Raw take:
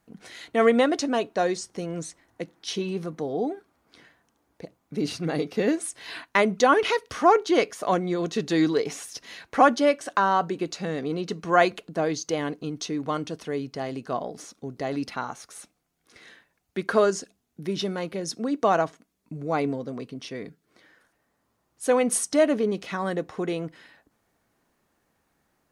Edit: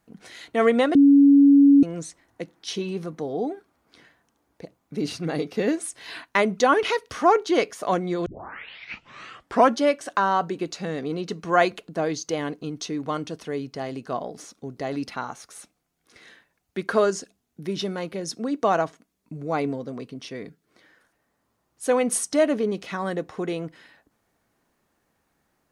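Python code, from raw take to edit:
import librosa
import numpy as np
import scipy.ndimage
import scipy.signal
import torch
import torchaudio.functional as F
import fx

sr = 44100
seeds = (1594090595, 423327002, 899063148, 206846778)

y = fx.edit(x, sr, fx.bleep(start_s=0.95, length_s=0.88, hz=281.0, db=-10.0),
    fx.tape_start(start_s=8.26, length_s=1.51), tone=tone)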